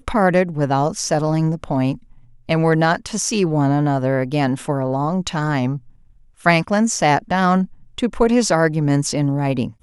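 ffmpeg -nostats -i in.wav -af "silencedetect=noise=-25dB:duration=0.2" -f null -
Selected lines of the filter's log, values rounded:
silence_start: 1.95
silence_end: 2.49 | silence_duration: 0.55
silence_start: 5.77
silence_end: 6.46 | silence_duration: 0.68
silence_start: 7.65
silence_end: 7.98 | silence_duration: 0.34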